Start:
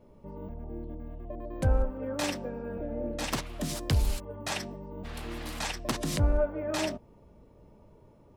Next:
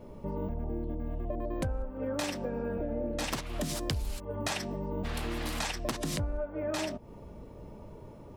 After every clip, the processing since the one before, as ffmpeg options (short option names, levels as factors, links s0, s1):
-af "acompressor=threshold=0.0112:ratio=10,volume=2.82"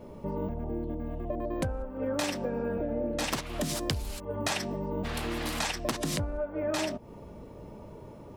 -af "lowshelf=f=65:g=-8,volume=1.41"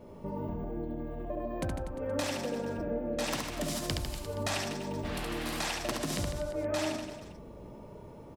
-af "aecho=1:1:70|150.5|243.1|349.5|472:0.631|0.398|0.251|0.158|0.1,volume=0.631"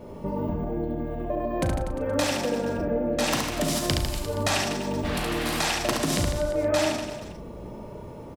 -filter_complex "[0:a]asplit=2[s0][s1];[s1]adelay=37,volume=0.316[s2];[s0][s2]amix=inputs=2:normalize=0,volume=2.51"